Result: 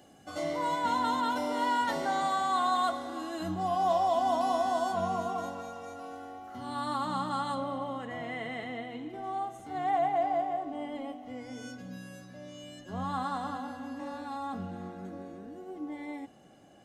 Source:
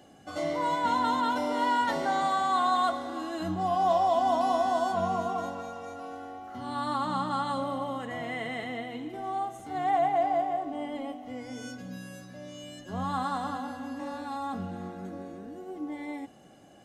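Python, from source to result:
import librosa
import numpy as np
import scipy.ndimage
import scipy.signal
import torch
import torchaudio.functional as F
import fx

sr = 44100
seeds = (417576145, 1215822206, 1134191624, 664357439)

y = fx.high_shelf(x, sr, hz=6700.0, db=fx.steps((0.0, 5.5), (7.54, -8.0), (9.22, -3.0)))
y = F.gain(torch.from_numpy(y), -2.5).numpy()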